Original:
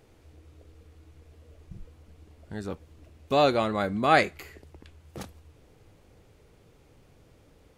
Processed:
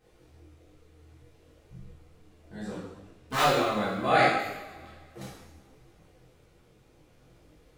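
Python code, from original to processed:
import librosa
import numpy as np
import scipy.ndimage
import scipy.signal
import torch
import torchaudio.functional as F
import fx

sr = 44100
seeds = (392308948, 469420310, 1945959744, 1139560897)

y = fx.self_delay(x, sr, depth_ms=0.96, at=(2.71, 3.42))
y = fx.rev_double_slope(y, sr, seeds[0], early_s=0.87, late_s=2.4, knee_db=-18, drr_db=-8.5)
y = fx.detune_double(y, sr, cents=23)
y = F.gain(torch.from_numpy(y), -6.0).numpy()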